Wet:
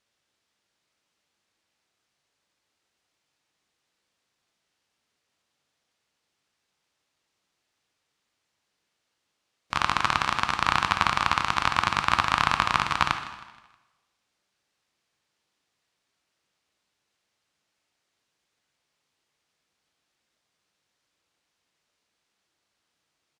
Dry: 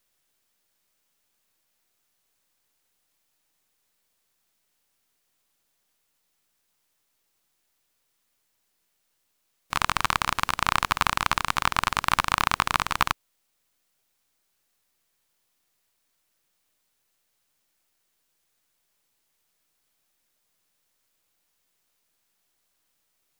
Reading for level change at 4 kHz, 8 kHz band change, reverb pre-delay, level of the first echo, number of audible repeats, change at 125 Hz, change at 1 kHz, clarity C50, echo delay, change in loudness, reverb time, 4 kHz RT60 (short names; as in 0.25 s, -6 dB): 0.0 dB, -5.0 dB, 7 ms, -16.0 dB, 3, +1.0 dB, +1.0 dB, 8.5 dB, 0.158 s, +0.5 dB, 1.2 s, 1.2 s